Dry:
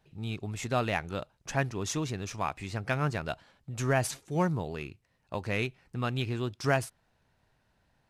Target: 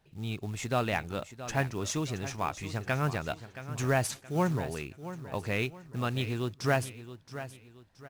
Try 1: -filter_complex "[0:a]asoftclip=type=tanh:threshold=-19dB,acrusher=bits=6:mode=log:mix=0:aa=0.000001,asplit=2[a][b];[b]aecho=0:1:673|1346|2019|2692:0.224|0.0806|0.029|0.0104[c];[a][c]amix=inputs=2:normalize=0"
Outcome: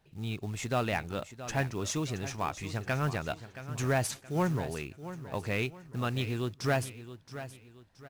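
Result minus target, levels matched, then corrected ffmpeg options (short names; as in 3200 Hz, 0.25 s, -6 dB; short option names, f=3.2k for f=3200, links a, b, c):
soft clip: distortion +13 dB
-filter_complex "[0:a]asoftclip=type=tanh:threshold=-11dB,acrusher=bits=6:mode=log:mix=0:aa=0.000001,asplit=2[a][b];[b]aecho=0:1:673|1346|2019|2692:0.224|0.0806|0.029|0.0104[c];[a][c]amix=inputs=2:normalize=0"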